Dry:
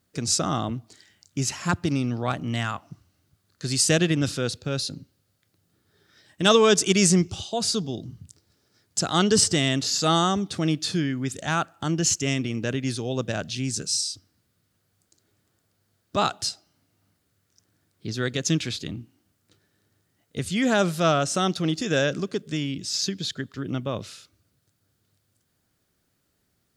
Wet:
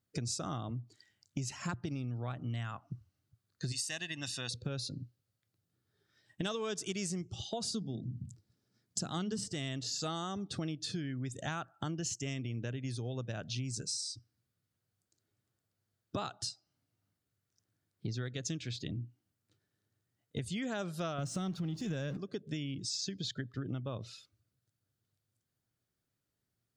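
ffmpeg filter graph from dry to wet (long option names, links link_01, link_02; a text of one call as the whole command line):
ffmpeg -i in.wav -filter_complex "[0:a]asettb=1/sr,asplit=3[link_01][link_02][link_03];[link_01]atrim=end=3.724[link_04];[link_02]atrim=start=3.72:end=4.51,asetpts=PTS-STARTPTS,afade=type=in:duration=0.004:curve=qsin,afade=type=out:start_time=0.786:duration=0.004:curve=qsin,highpass=frequency=1100:poles=1,aecho=1:1:1.1:0.65,atrim=end_sample=34839[link_05];[link_03]atrim=start=4.506[link_06];[link_04][link_05]acrossfade=duration=0.004:curve1=hsin:curve2=qsin[link_07];[link_07][link_06]acrossfade=duration=0.004:curve1=qsin:curve2=hsin,asettb=1/sr,asplit=3[link_08][link_09][link_10];[link_08]atrim=end=7.644[link_11];[link_09]atrim=start=7.64:end=9.48,asetpts=PTS-STARTPTS,afade=type=in:duration=0.004:curve=qsin,afade=type=out:start_time=1.836:duration=0.004:curve=qsin,equalizer=frequency=210:width=1.4:gain=9.5,bandreject=frequency=50:width_type=h:width=6,bandreject=frequency=100:width_type=h:width=6,bandreject=frequency=150:width_type=h:width=6,bandreject=frequency=200:width_type=h:width=6,bandreject=frequency=250:width_type=h:width=6,bandreject=frequency=300:width_type=h:width=6[link_12];[link_10]atrim=start=9.476[link_13];[link_11][link_12]acrossfade=duration=0.004:curve1=hsin:curve2=qsin[link_14];[link_14][link_13]acrossfade=duration=0.004:curve1=qsin:curve2=hsin,asettb=1/sr,asplit=3[link_15][link_16][link_17];[link_15]atrim=end=21.184[link_18];[link_16]atrim=start=21.18:end=22.17,asetpts=PTS-STARTPTS,afade=type=in:duration=0.004:curve=qsin,afade=type=out:start_time=0.986:duration=0.004:curve=qsin,aeval=exprs='val(0)+0.5*0.0335*sgn(val(0))':channel_layout=same,equalizer=frequency=170:width_type=o:width=1.3:gain=11[link_19];[link_17]atrim=start=22.166[link_20];[link_18][link_19]acrossfade=duration=0.004:curve1=hsin:curve2=qsin[link_21];[link_21][link_20]acrossfade=duration=0.004:curve1=qsin:curve2=hsin,afftdn=noise_reduction=15:noise_floor=-44,equalizer=frequency=120:width_type=o:width=0.29:gain=9,acompressor=threshold=-35dB:ratio=10" out.wav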